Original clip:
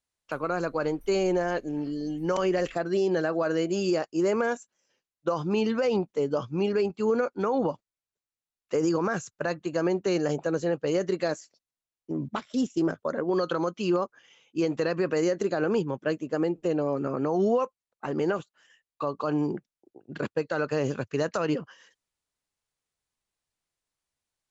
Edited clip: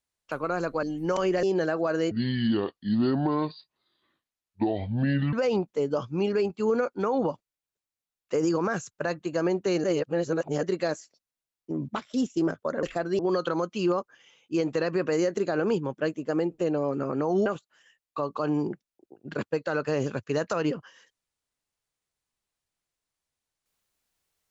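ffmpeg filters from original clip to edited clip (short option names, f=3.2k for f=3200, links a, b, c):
-filter_complex "[0:a]asplit=10[a][b][c][d][e][f][g][h][i][j];[a]atrim=end=0.832[k];[b]atrim=start=2.028:end=2.632[l];[c]atrim=start=2.988:end=3.674[m];[d]atrim=start=3.67:end=5.73,asetpts=PTS-STARTPTS,asetrate=28224,aresample=44100[n];[e]atrim=start=5.726:end=10.242[o];[f]atrim=start=10.238:end=11.032,asetpts=PTS-STARTPTS,areverse[p];[g]atrim=start=11.028:end=13.232[q];[h]atrim=start=2.628:end=2.992[r];[i]atrim=start=13.228:end=17.502[s];[j]atrim=start=18.298[t];[k][l]acrossfade=d=0.004:c1=hsin:c2=hsin[u];[u][m]acrossfade=d=0.004:c1=hsin:c2=hsin[v];[v][n]acrossfade=d=0.004:c1=hsin:c2=hsin[w];[w][o]acrossfade=d=0.004:c1=hsin:c2=hsin[x];[x][p]acrossfade=d=0.004:c1=hsin:c2=hsin[y];[y][q]acrossfade=d=0.004:c1=hsin:c2=hsin[z];[z][r]acrossfade=d=0.004:c1=hsin:c2=hsin[aa];[aa][s]acrossfade=d=0.004:c1=hsin:c2=hsin[ab];[ab][t]acrossfade=d=0.004:c1=hsin:c2=hsin"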